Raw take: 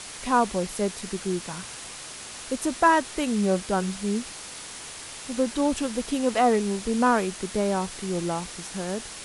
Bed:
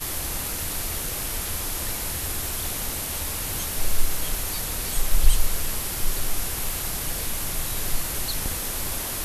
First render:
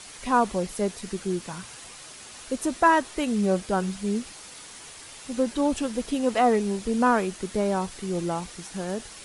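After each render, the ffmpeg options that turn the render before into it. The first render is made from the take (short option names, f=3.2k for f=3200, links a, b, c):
-af "afftdn=nr=6:nf=-40"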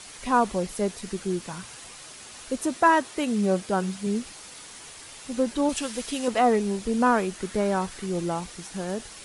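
-filter_complex "[0:a]asettb=1/sr,asplit=3[a][b][c];[a]atrim=end=2.614[d];[b]atrim=start=2.61:end=4.07,asetpts=PTS-STARTPTS,afade=t=in:d=0.004:c=qsin,afade=t=out:st=1.456:d=0.004:c=qsin,highpass=87[e];[c]atrim=start=4.066[f];[d][e]acrossfade=d=0.004:c1=hsin:c2=qsin[g];[g][f]acrossfade=d=0.004:c1=qsin:c2=hsin,asettb=1/sr,asplit=3[h][i][j];[h]atrim=end=5.694[k];[i]atrim=start=5.69:end=6.28,asetpts=PTS-STARTPTS,afade=t=in:d=0.004:c=qsin,afade=t=out:st=0.586:d=0.004:c=qsin,tiltshelf=f=970:g=-5.5[l];[j]atrim=start=6.276[m];[k][l]acrossfade=d=0.004:c1=hsin:c2=qsin[n];[n][m]acrossfade=d=0.004:c1=qsin:c2=hsin,asettb=1/sr,asplit=3[o][p][q];[o]atrim=end=7.364[r];[p]atrim=start=7.36:end=8.06,asetpts=PTS-STARTPTS,afade=t=in:d=0.004:c=qsin,afade=t=out:st=0.696:d=0.004:c=qsin,equalizer=f=1.6k:w=1.5:g=4.5[s];[q]atrim=start=8.056[t];[r][s]acrossfade=d=0.004:c1=hsin:c2=qsin[u];[u][t]acrossfade=d=0.004:c1=qsin:c2=hsin"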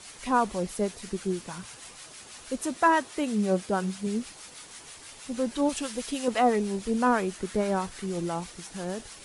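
-filter_complex "[0:a]acrossover=split=870[a][b];[a]aeval=exprs='val(0)*(1-0.5/2+0.5/2*cos(2*PI*6.2*n/s))':c=same[c];[b]aeval=exprs='val(0)*(1-0.5/2-0.5/2*cos(2*PI*6.2*n/s))':c=same[d];[c][d]amix=inputs=2:normalize=0"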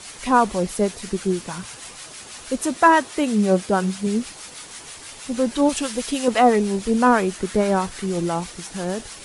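-af "volume=7.5dB"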